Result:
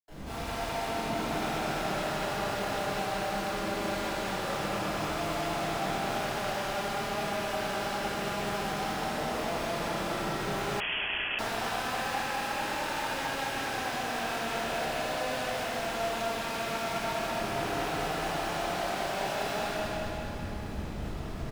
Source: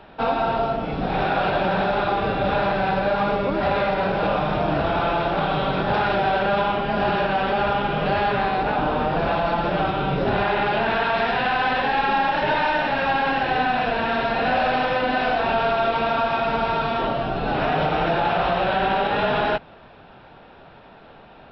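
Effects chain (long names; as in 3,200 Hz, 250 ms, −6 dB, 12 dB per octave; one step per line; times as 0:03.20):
comparator with hysteresis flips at −40 dBFS
repeating echo 206 ms, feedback 54%, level −3 dB
convolution reverb RT60 3.0 s, pre-delay 77 ms
0:10.80–0:11.39: voice inversion scrambler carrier 3,300 Hz
level −3 dB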